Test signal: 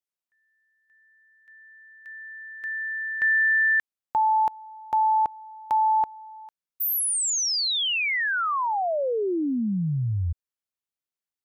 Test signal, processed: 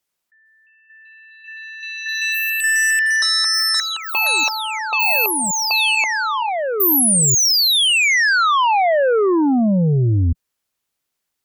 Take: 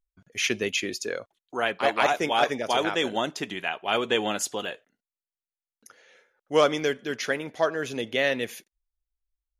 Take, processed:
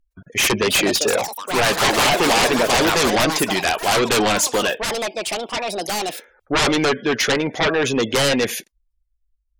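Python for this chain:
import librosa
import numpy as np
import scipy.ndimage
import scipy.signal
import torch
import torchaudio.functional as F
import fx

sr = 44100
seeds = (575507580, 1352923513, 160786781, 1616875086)

y = fx.spec_gate(x, sr, threshold_db=-25, keep='strong')
y = fx.fold_sine(y, sr, drive_db=18, ceiling_db=-6.5)
y = fx.echo_pitch(y, sr, ms=455, semitones=7, count=3, db_per_echo=-6.0)
y = y * librosa.db_to_amplitude(-7.0)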